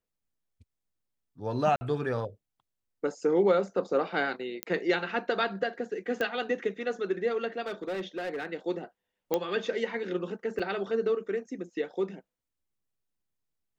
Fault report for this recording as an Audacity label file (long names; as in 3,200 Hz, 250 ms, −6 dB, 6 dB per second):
1.760000	1.810000	drop-out 50 ms
4.630000	4.630000	click −13 dBFS
6.210000	6.210000	click −18 dBFS
7.620000	8.460000	clipping −29.5 dBFS
9.340000	9.340000	click −13 dBFS
10.590000	10.600000	drop-out 5.7 ms